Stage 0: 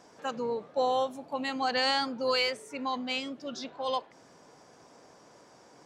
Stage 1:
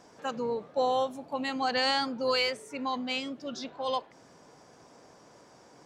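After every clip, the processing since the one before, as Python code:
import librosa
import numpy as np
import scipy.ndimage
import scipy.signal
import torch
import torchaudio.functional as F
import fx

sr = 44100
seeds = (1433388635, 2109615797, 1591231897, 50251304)

y = fx.low_shelf(x, sr, hz=160.0, db=4.5)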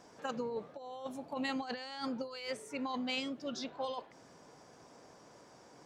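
y = fx.over_compress(x, sr, threshold_db=-32.0, ratio=-0.5)
y = y * librosa.db_to_amplitude(-5.5)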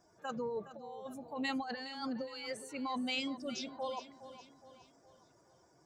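y = fx.bin_expand(x, sr, power=1.5)
y = fx.transient(y, sr, attack_db=-4, sustain_db=2)
y = fx.echo_feedback(y, sr, ms=415, feedback_pct=46, wet_db=-13.5)
y = y * librosa.db_to_amplitude(2.5)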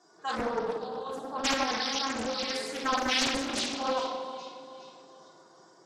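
y = fx.cabinet(x, sr, low_hz=210.0, low_slope=24, high_hz=8700.0, hz=(260.0, 620.0, 1100.0, 2400.0, 4100.0), db=(-8, -6, 3, -6, 8))
y = fx.room_shoebox(y, sr, seeds[0], volume_m3=1600.0, walls='mixed', distance_m=3.4)
y = fx.doppler_dist(y, sr, depth_ms=0.74)
y = y * librosa.db_to_amplitude(5.0)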